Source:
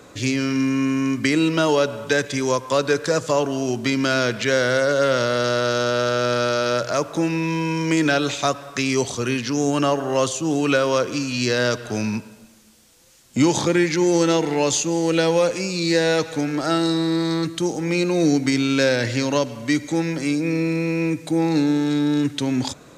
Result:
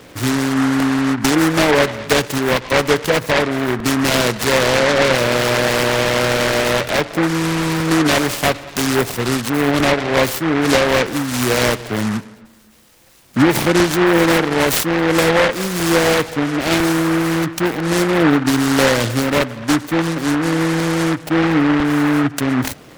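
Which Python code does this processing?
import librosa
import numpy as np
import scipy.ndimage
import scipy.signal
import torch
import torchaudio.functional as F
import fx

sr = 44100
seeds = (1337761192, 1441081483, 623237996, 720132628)

y = fx.spec_gate(x, sr, threshold_db=-25, keep='strong')
y = fx.buffer_crackle(y, sr, first_s=0.8, period_s=1.0, block=64, kind='repeat')
y = fx.noise_mod_delay(y, sr, seeds[0], noise_hz=1200.0, depth_ms=0.2)
y = y * 10.0 ** (4.5 / 20.0)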